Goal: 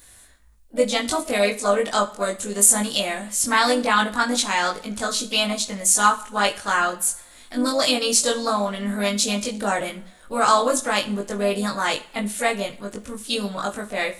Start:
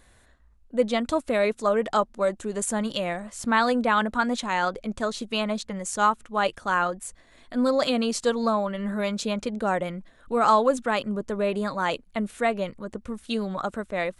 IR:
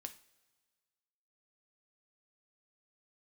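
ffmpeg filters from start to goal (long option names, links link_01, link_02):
-filter_complex "[0:a]crystalizer=i=5:c=0,asplit=2[link_01][link_02];[link_02]asetrate=52444,aresample=44100,atempo=0.840896,volume=-12dB[link_03];[link_01][link_03]amix=inputs=2:normalize=0,asplit=2[link_04][link_05];[1:a]atrim=start_sample=2205,adelay=20[link_06];[link_05][link_06]afir=irnorm=-1:irlink=0,volume=4dB[link_07];[link_04][link_07]amix=inputs=2:normalize=0,volume=-2.5dB"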